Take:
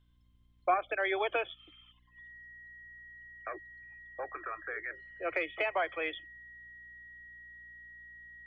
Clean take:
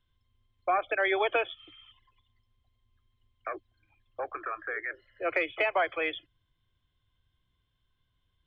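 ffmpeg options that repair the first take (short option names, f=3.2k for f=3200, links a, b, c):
-af "bandreject=f=59.7:t=h:w=4,bandreject=f=119.4:t=h:w=4,bandreject=f=179.1:t=h:w=4,bandreject=f=238.8:t=h:w=4,bandreject=f=298.5:t=h:w=4,bandreject=f=1.9k:w=30,asetnsamples=n=441:p=0,asendcmd='0.74 volume volume 4.5dB',volume=0dB"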